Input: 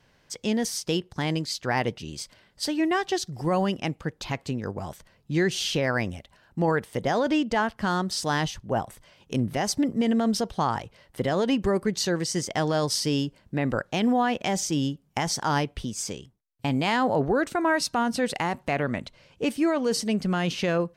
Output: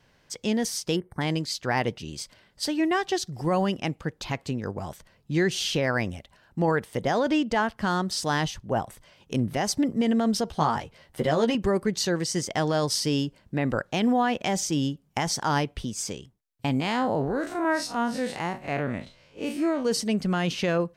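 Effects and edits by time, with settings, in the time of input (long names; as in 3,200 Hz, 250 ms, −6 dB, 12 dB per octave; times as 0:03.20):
0:00.96–0:01.21: gain on a spectral selection 2,300–8,100 Hz −20 dB
0:10.46–0:11.55: double-tracking delay 13 ms −4.5 dB
0:16.80–0:19.85: spectrum smeared in time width 87 ms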